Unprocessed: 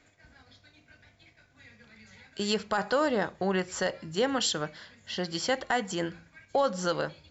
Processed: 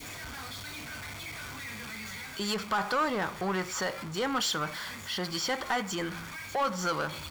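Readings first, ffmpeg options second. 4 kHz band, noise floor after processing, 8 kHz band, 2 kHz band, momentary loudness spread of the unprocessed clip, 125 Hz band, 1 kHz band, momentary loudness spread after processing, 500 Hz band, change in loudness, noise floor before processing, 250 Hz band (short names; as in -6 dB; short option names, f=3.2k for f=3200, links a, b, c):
+0.5 dB, -43 dBFS, n/a, +1.0 dB, 9 LU, -0.5 dB, +1.0 dB, 11 LU, -5.0 dB, -2.5 dB, -63 dBFS, -2.5 dB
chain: -af "aeval=exprs='val(0)+0.5*0.0119*sgn(val(0))':c=same,lowshelf=f=290:g=-5,aecho=1:1:0.9:0.33,areverse,acompressor=mode=upward:threshold=-38dB:ratio=2.5,areverse,asoftclip=type=tanh:threshold=-25.5dB,adynamicequalizer=threshold=0.00562:dfrequency=1300:dqfactor=1:tfrequency=1300:tqfactor=1:attack=5:release=100:ratio=0.375:range=2.5:mode=boostabove:tftype=bell"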